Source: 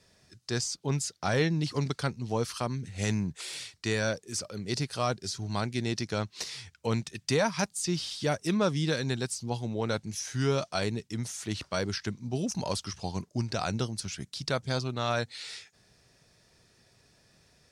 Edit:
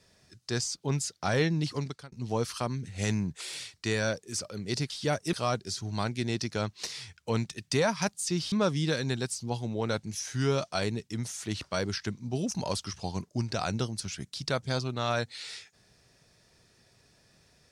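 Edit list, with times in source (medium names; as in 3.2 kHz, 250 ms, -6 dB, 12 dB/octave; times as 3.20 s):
1.66–2.12 s: fade out
8.09–8.52 s: move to 4.90 s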